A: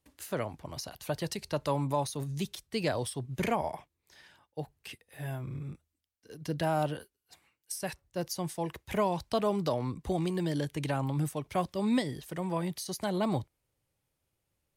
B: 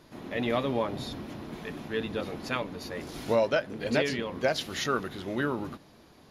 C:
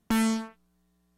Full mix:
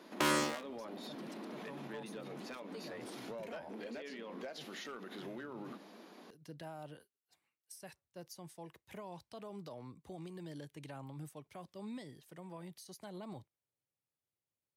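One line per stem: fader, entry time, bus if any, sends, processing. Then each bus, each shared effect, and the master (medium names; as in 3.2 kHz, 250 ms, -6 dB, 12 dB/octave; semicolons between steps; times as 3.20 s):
-15.0 dB, 0.00 s, bus A, no send, high-pass 120 Hz
+2.0 dB, 0.00 s, bus A, no send, compression 8:1, threshold -37 dBFS, peak gain reduction 16.5 dB; elliptic high-pass 190 Hz; tone controls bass -1 dB, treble -4 dB
-2.0 dB, 0.10 s, no bus, no send, cycle switcher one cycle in 3, inverted; frequency weighting A
bus A: 0.0 dB, overload inside the chain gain 31.5 dB; peak limiter -38.5 dBFS, peak gain reduction 7 dB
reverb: none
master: none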